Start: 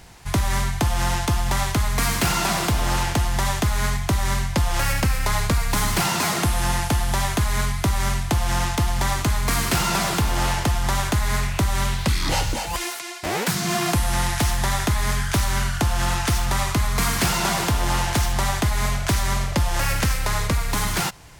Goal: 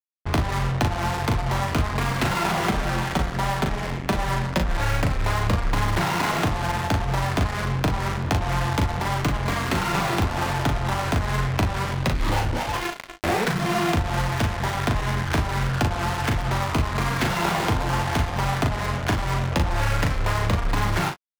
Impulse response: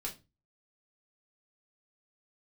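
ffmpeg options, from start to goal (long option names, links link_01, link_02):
-filter_complex "[0:a]asettb=1/sr,asplit=3[link_01][link_02][link_03];[link_01]atrim=end=2.644[link_04];[link_02]atrim=start=2.64:end=4.77,asetpts=PTS-STARTPTS,afade=type=in:duration=0.004:curve=qsin,afade=type=out:start_time=2.126:duration=0.004:curve=qsin,aecho=1:1:5.2:0.87,atrim=end_sample=93933[link_05];[link_03]atrim=start=4.766[link_06];[link_04][link_05]acrossfade=duration=0.004:curve1=hsin:curve2=qsin[link_07];[link_07][link_06]acrossfade=duration=0.004:curve1=qsin:curve2=hsin,acompressor=threshold=-23dB:ratio=12,aeval=exprs='sgn(val(0))*max(abs(val(0))-0.00794,0)':channel_layout=same,flanger=delay=6.3:depth=6.6:regen=-25:speed=1.4:shape=triangular,adynamicsmooth=sensitivity=5.5:basefreq=700,acrusher=bits=5:mix=0:aa=0.5,aecho=1:1:38|59:0.531|0.158,volume=9dB"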